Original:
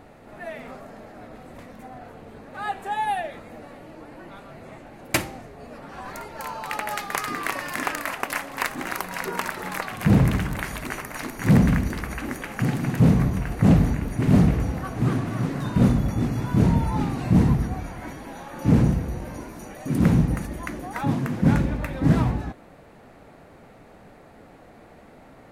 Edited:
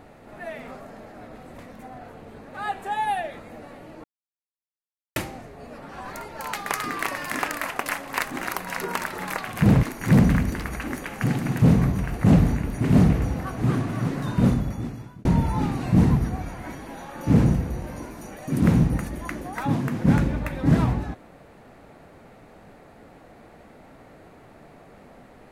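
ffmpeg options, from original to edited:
ffmpeg -i in.wav -filter_complex "[0:a]asplit=6[link_01][link_02][link_03][link_04][link_05][link_06];[link_01]atrim=end=4.04,asetpts=PTS-STARTPTS,afade=type=out:start_time=4.036:duration=0.004:curve=hsin[link_07];[link_02]atrim=start=4.04:end=5.16,asetpts=PTS-STARTPTS,volume=0[link_08];[link_03]atrim=start=5.16:end=6.532,asetpts=PTS-STARTPTS,afade=type=in:duration=0.004:curve=hsin[link_09];[link_04]atrim=start=6.968:end=10.272[link_10];[link_05]atrim=start=11.208:end=16.63,asetpts=PTS-STARTPTS,afade=type=out:start_time=4.502:duration=0.92[link_11];[link_06]atrim=start=16.63,asetpts=PTS-STARTPTS,afade=type=in:duration=0.004:curve=hsin[link_12];[link_07][link_08][link_09]concat=n=3:v=0:a=1[link_13];[link_13][link_10]acrossfade=duration=0.004:curve1=hsin:curve2=hsin[link_14];[link_11][link_12]concat=n=2:v=0:a=1[link_15];[link_14][link_15]acrossfade=duration=0.004:curve1=hsin:curve2=hsin" out.wav

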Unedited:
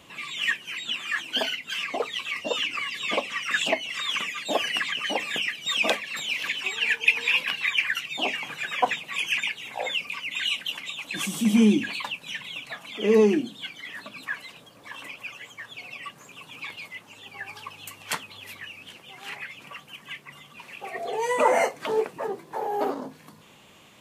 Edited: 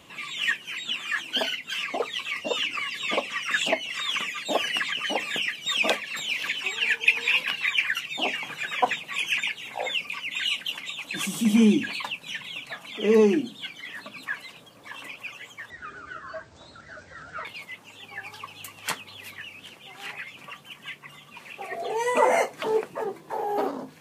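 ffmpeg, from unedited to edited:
ffmpeg -i in.wav -filter_complex "[0:a]asplit=3[link_01][link_02][link_03];[link_01]atrim=end=15.704[link_04];[link_02]atrim=start=15.7:end=16.68,asetpts=PTS-STARTPTS,asetrate=24696,aresample=44100[link_05];[link_03]atrim=start=16.676[link_06];[link_04][link_05]acrossfade=duration=0.004:curve1=hsin:curve2=hsin[link_07];[link_07][link_06]acrossfade=duration=0.004:curve1=hsin:curve2=hsin" out.wav

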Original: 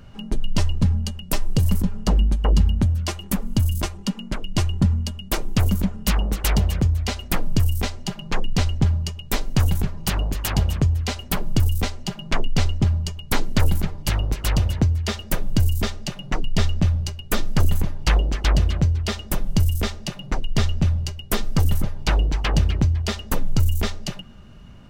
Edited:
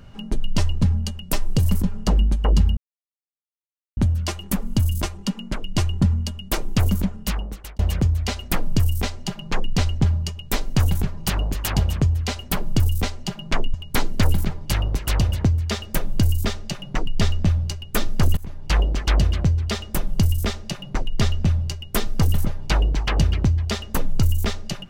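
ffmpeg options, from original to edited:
ffmpeg -i in.wav -filter_complex "[0:a]asplit=5[link_01][link_02][link_03][link_04][link_05];[link_01]atrim=end=2.77,asetpts=PTS-STARTPTS,afade=type=out:start_time=2.766:duration=0.004:curve=hsin,apad=pad_dur=1.2[link_06];[link_02]atrim=start=2.77:end=6.59,asetpts=PTS-STARTPTS,afade=type=in:duration=0.004:curve=hsin,afade=type=out:start_time=3.01:duration=0.81[link_07];[link_03]atrim=start=6.59:end=12.542,asetpts=PTS-STARTPTS,afade=type=in:duration=0.004:curve=hsin[link_08];[link_04]atrim=start=13.108:end=17.74,asetpts=PTS-STARTPTS,afade=type=out:start_time=4.628:duration=0.004:curve=hsin:silence=0.0841395[link_09];[link_05]atrim=start=17.74,asetpts=PTS-STARTPTS,afade=type=in:duration=0.45:silence=0.0841395[link_10];[link_06][link_07][link_08]concat=n=3:v=0:a=1[link_11];[link_09][link_10]concat=n=2:v=0:a=1[link_12];[link_11][link_12]acrossfade=duration=0.004:curve1=hsin:curve2=hsin" out.wav

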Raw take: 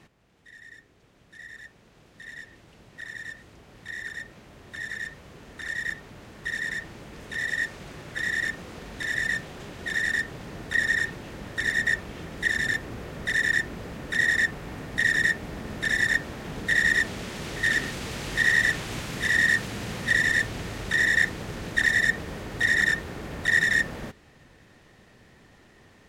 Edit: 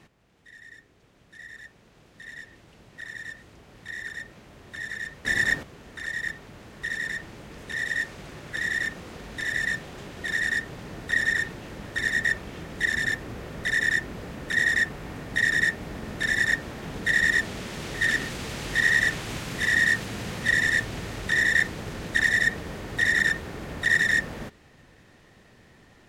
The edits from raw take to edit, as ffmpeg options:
ffmpeg -i in.wav -filter_complex "[0:a]asplit=3[link_01][link_02][link_03];[link_01]atrim=end=5.252[link_04];[link_02]atrim=start=15.878:end=16.262[link_05];[link_03]atrim=start=5.248[link_06];[link_04][link_05]acrossfade=duration=0.004:curve1=hsin:curve2=hsin[link_07];[link_07][link_06]acrossfade=duration=0.004:curve1=hsin:curve2=hsin" out.wav

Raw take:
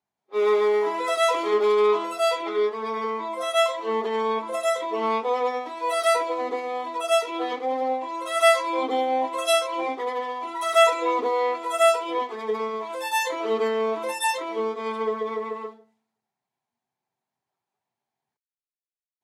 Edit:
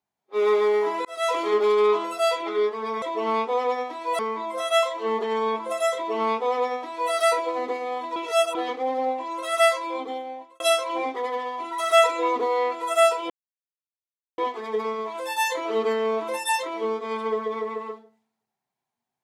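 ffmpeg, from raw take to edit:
ffmpeg -i in.wav -filter_complex "[0:a]asplit=8[link_01][link_02][link_03][link_04][link_05][link_06][link_07][link_08];[link_01]atrim=end=1.05,asetpts=PTS-STARTPTS,afade=type=out:start_time=1.046:duration=0.004:curve=hsin[link_09];[link_02]atrim=start=1.05:end=3.022,asetpts=PTS-STARTPTS,afade=type=in:duration=0.32[link_10];[link_03]atrim=start=4.778:end=5.952[link_11];[link_04]atrim=start=3.018:end=6.992[link_12];[link_05]atrim=start=6.988:end=7.382,asetpts=PTS-STARTPTS,areverse[link_13];[link_06]atrim=start=7.378:end=9.43,asetpts=PTS-STARTPTS,afade=type=out:start_time=0.912:duration=1.14[link_14];[link_07]atrim=start=9.43:end=12.13,asetpts=PTS-STARTPTS,afade=type=in:duration=0.004:curve=hsin,afade=type=out:start_time=2.696:duration=0.004:curve=hsin,apad=pad_dur=1.08[link_15];[link_08]atrim=start=12.13,asetpts=PTS-STARTPTS,afade=type=in:duration=0.004:curve=hsin[link_16];[link_09][link_10]concat=n=2:v=0:a=1[link_17];[link_17][link_11]acrossfade=duration=0.004:curve1=hsin:curve2=hsin[link_18];[link_18][link_12]acrossfade=duration=0.004:curve1=hsin:curve2=hsin[link_19];[link_19][link_13]acrossfade=duration=0.004:curve1=hsin:curve2=hsin[link_20];[link_14][link_15][link_16]concat=n=3:v=0:a=1[link_21];[link_20][link_21]acrossfade=duration=0.004:curve1=hsin:curve2=hsin" out.wav

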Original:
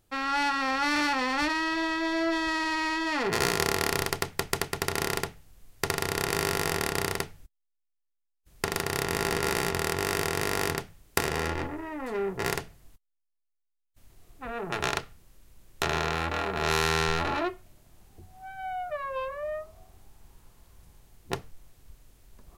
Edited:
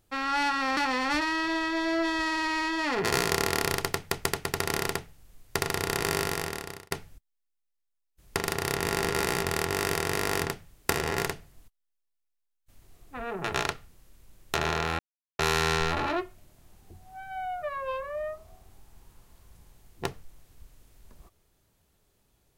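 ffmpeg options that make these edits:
ffmpeg -i in.wav -filter_complex "[0:a]asplit=6[link_01][link_02][link_03][link_04][link_05][link_06];[link_01]atrim=end=0.772[link_07];[link_02]atrim=start=1.048:end=7.19,asetpts=PTS-STARTPTS,afade=type=out:start_time=5.392:duration=0.75[link_08];[link_03]atrim=start=7.19:end=11.392,asetpts=PTS-STARTPTS,afade=type=in:duration=0.004:curve=hsin[link_09];[link_04]atrim=start=12.388:end=16.27,asetpts=PTS-STARTPTS,afade=type=out:start_time=3.878:duration=0.004:curve=hsin[link_10];[link_05]atrim=start=16.27:end=16.67,asetpts=PTS-STARTPTS,volume=0[link_11];[link_06]atrim=start=16.67,asetpts=PTS-STARTPTS,afade=type=in:duration=0.004:curve=hsin[link_12];[link_08][link_09]concat=n=2:v=0:a=1[link_13];[link_07][link_13]acrossfade=duration=0.004:curve1=hsin:curve2=hsin[link_14];[link_10][link_11][link_12]concat=n=3:v=0:a=1[link_15];[link_14][link_15]acrossfade=duration=0.004:curve1=hsin:curve2=hsin" out.wav

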